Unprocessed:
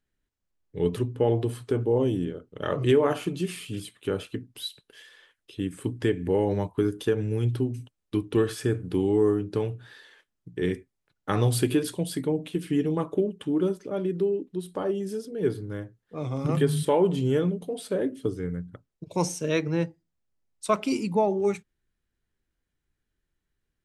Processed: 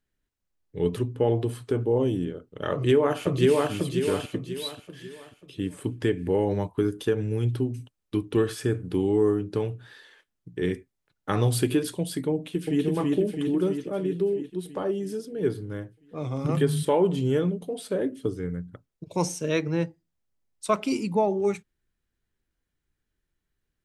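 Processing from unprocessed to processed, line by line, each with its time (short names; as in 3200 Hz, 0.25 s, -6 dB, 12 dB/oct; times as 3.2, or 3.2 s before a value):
2.71–3.71 echo throw 0.54 s, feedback 40%, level -0.5 dB
12.34–12.84 echo throw 0.33 s, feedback 65%, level -1 dB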